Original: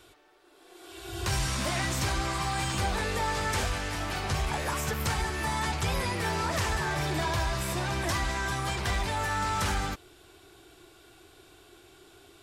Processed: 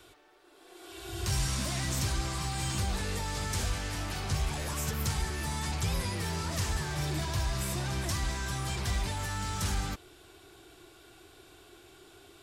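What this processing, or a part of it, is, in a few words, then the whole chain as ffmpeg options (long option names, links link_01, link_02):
one-band saturation: -filter_complex "[0:a]acrossover=split=260|3900[link_01][link_02][link_03];[link_02]asoftclip=type=tanh:threshold=-38.5dB[link_04];[link_01][link_04][link_03]amix=inputs=3:normalize=0"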